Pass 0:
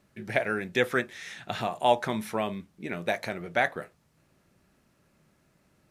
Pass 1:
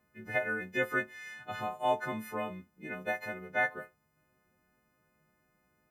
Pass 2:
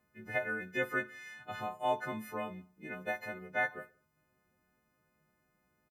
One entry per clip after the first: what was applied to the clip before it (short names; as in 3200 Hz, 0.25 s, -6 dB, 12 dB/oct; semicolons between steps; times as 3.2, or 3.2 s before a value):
frequency quantiser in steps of 3 st; band shelf 6100 Hz -14 dB 2.4 oct; gain -7 dB
feedback echo 60 ms, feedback 52%, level -18 dB; gain -2.5 dB